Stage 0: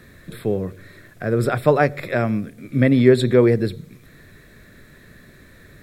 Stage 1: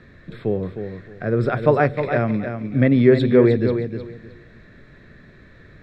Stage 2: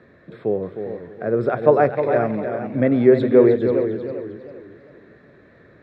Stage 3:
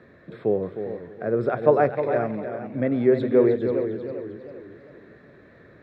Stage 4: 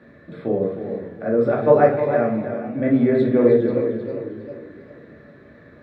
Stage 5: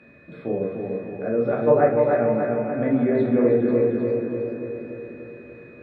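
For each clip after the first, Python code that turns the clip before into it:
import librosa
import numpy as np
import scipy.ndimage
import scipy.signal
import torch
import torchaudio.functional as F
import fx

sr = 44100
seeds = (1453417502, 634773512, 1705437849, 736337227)

y1 = fx.air_absorb(x, sr, metres=190.0)
y1 = fx.echo_feedback(y1, sr, ms=310, feedback_pct=22, wet_db=-8.0)
y2 = scipy.signal.sosfilt(scipy.signal.butter(2, 69.0, 'highpass', fs=sr, output='sos'), y1)
y2 = fx.peak_eq(y2, sr, hz=590.0, db=13.5, octaves=3.0)
y2 = fx.echo_warbled(y2, sr, ms=402, feedback_pct=31, rate_hz=2.8, cents=139, wet_db=-10.0)
y2 = y2 * librosa.db_to_amplitude(-10.5)
y3 = fx.rider(y2, sr, range_db=5, speed_s=2.0)
y3 = y3 * librosa.db_to_amplitude(-5.5)
y4 = fx.room_shoebox(y3, sr, seeds[0], volume_m3=310.0, walls='furnished', distance_m=2.4)
y4 = y4 * librosa.db_to_amplitude(-1.5)
y5 = y4 + 10.0 ** (-50.0 / 20.0) * np.sin(2.0 * np.pi * 2500.0 * np.arange(len(y4)) / sr)
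y5 = fx.env_lowpass_down(y5, sr, base_hz=2800.0, full_db=-12.0)
y5 = fx.echo_bbd(y5, sr, ms=293, stages=4096, feedback_pct=61, wet_db=-5)
y5 = y5 * librosa.db_to_amplitude(-4.0)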